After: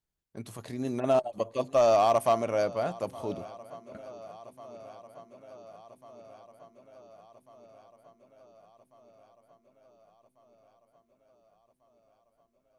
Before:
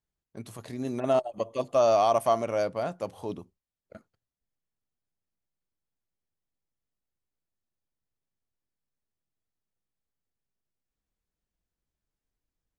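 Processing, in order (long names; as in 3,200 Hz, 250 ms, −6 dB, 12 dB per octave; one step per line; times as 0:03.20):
feedback echo with a long and a short gap by turns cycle 1,445 ms, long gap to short 1.5 to 1, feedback 62%, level −21 dB
hard clipping −16 dBFS, distortion −24 dB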